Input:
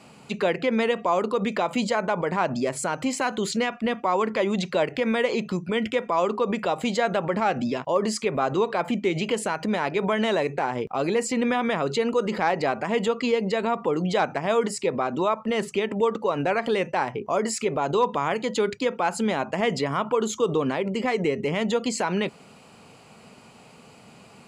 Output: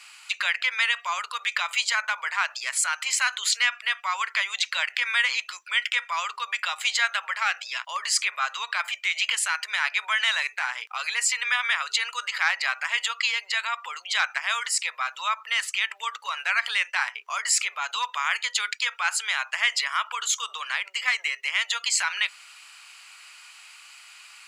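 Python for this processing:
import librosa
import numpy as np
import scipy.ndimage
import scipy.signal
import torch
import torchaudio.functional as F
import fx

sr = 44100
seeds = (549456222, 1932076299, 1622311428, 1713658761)

y = scipy.signal.sosfilt(scipy.signal.cheby2(4, 80, 240.0, 'highpass', fs=sr, output='sos'), x)
y = y * librosa.db_to_amplitude(8.5)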